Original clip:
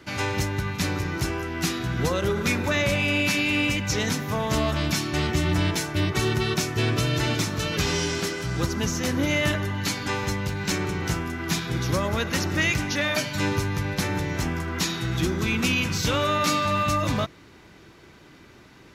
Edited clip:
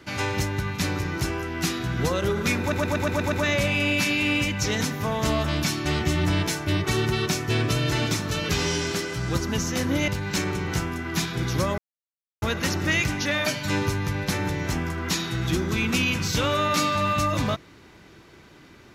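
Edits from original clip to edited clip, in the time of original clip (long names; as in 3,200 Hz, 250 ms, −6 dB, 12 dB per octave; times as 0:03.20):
0:02.60: stutter 0.12 s, 7 plays
0:09.36–0:10.42: remove
0:12.12: splice in silence 0.64 s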